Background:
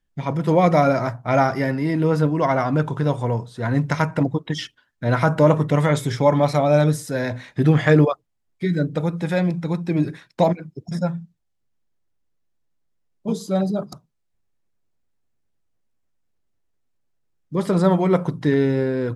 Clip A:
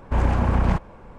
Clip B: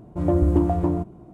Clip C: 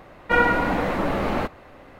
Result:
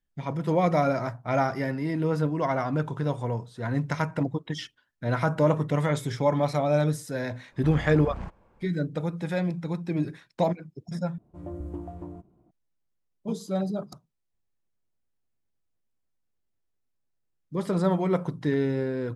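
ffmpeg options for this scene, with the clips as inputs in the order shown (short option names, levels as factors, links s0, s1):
-filter_complex "[0:a]volume=0.447,asplit=2[s0][s1];[s0]atrim=end=11.184[s2];[2:a]atrim=end=1.33,asetpts=PTS-STARTPTS,volume=0.133[s3];[s1]atrim=start=12.506[s4];[1:a]atrim=end=1.18,asetpts=PTS-STARTPTS,volume=0.15,afade=t=in:d=0.004:c=hsin,afade=t=out:st=1.176:d=0.004:c=hsin,adelay=7520[s5];[s2][s3]acrossfade=d=0.004:c1=hsin:c2=hsin[s6];[s6][s4]acrossfade=d=0.004:c1=hsin:c2=hsin[s7];[s7][s5]amix=inputs=2:normalize=0"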